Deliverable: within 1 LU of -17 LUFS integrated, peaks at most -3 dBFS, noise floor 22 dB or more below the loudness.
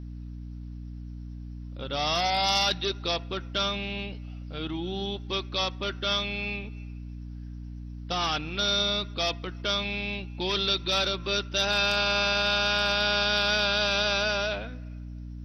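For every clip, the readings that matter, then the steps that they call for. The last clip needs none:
hum 60 Hz; harmonics up to 300 Hz; hum level -36 dBFS; loudness -26.5 LUFS; peak -14.5 dBFS; loudness target -17.0 LUFS
-> notches 60/120/180/240/300 Hz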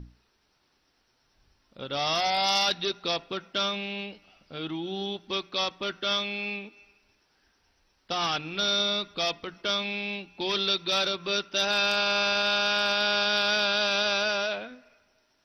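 hum none; loudness -26.5 LUFS; peak -14.0 dBFS; loudness target -17.0 LUFS
-> gain +9.5 dB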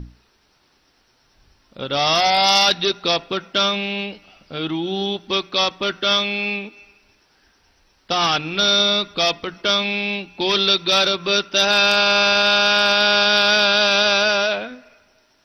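loudness -17.0 LUFS; peak -4.5 dBFS; noise floor -61 dBFS

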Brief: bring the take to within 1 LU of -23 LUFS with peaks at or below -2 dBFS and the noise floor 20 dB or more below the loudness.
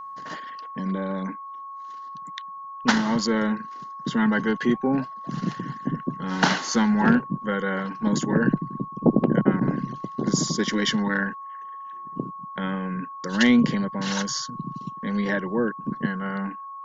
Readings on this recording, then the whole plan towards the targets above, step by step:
steady tone 1100 Hz; tone level -35 dBFS; loudness -25.0 LUFS; peak -3.0 dBFS; loudness target -23.0 LUFS
-> notch 1100 Hz, Q 30; gain +2 dB; limiter -2 dBFS

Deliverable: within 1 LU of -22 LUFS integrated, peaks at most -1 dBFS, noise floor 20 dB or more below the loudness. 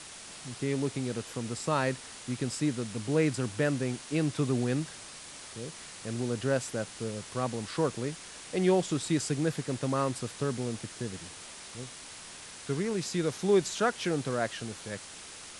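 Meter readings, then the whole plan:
noise floor -47 dBFS; noise floor target -52 dBFS; loudness -31.5 LUFS; peak -14.5 dBFS; loudness target -22.0 LUFS
-> noise print and reduce 6 dB; gain +9.5 dB

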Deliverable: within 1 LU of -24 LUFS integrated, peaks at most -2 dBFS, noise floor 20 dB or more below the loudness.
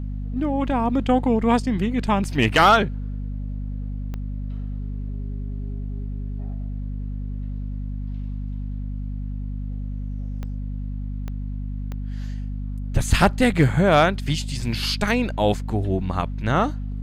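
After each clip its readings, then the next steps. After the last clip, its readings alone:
clicks 4; hum 50 Hz; harmonics up to 250 Hz; hum level -26 dBFS; loudness -24.0 LUFS; peak -6.0 dBFS; loudness target -24.0 LUFS
-> de-click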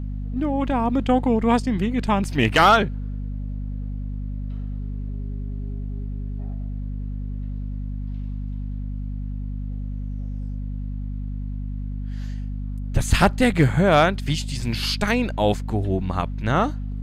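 clicks 0; hum 50 Hz; harmonics up to 250 Hz; hum level -26 dBFS
-> notches 50/100/150/200/250 Hz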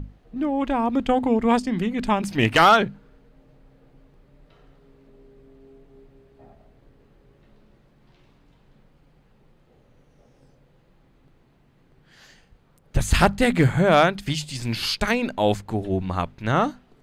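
hum none; loudness -21.5 LUFS; peak -5.0 dBFS; loudness target -24.0 LUFS
-> gain -2.5 dB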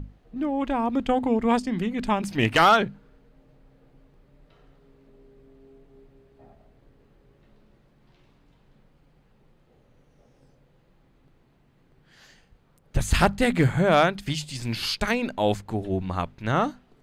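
loudness -24.0 LUFS; peak -7.5 dBFS; noise floor -62 dBFS

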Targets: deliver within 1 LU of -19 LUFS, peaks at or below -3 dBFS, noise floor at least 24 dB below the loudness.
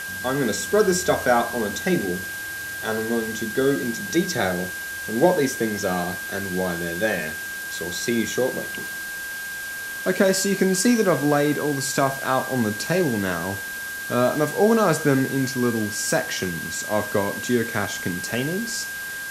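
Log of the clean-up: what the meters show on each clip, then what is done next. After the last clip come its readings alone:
steady tone 1600 Hz; tone level -30 dBFS; noise floor -32 dBFS; noise floor target -47 dBFS; loudness -23.0 LUFS; peak -3.5 dBFS; loudness target -19.0 LUFS
-> notch 1600 Hz, Q 30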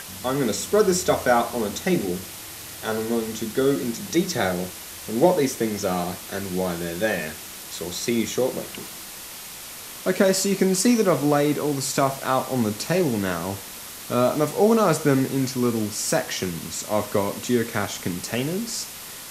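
steady tone none; noise floor -38 dBFS; noise floor target -48 dBFS
-> denoiser 10 dB, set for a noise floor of -38 dBFS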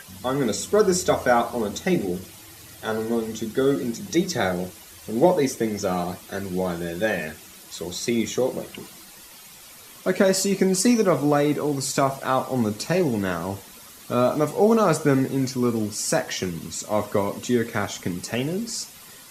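noise floor -45 dBFS; noise floor target -48 dBFS
-> denoiser 6 dB, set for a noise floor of -45 dBFS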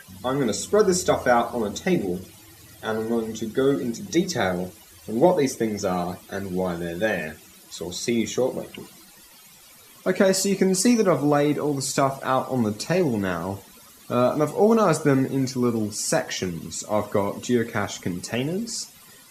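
noise floor -50 dBFS; loudness -23.5 LUFS; peak -4.0 dBFS; loudness target -19.0 LUFS
-> gain +4.5 dB; limiter -3 dBFS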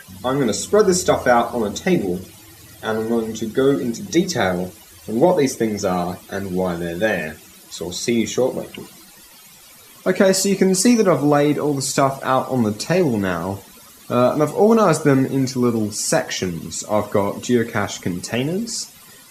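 loudness -19.0 LUFS; peak -3.0 dBFS; noise floor -45 dBFS

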